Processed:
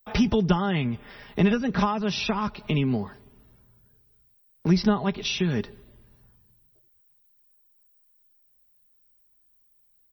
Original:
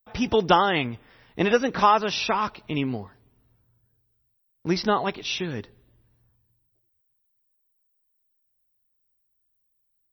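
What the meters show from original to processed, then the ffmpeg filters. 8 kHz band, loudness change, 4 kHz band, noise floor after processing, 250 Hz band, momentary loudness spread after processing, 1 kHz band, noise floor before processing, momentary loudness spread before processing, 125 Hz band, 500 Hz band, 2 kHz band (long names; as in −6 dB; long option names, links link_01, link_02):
−0.5 dB, −1.0 dB, −2.5 dB, −64 dBFS, +4.5 dB, 10 LU, −8.0 dB, −73 dBFS, 15 LU, +7.0 dB, −4.0 dB, −4.0 dB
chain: -filter_complex "[0:a]acrossover=split=200[link_01][link_02];[link_02]acompressor=threshold=-35dB:ratio=10[link_03];[link_01][link_03]amix=inputs=2:normalize=0,aecho=1:1:4.9:0.45,volume=8.5dB"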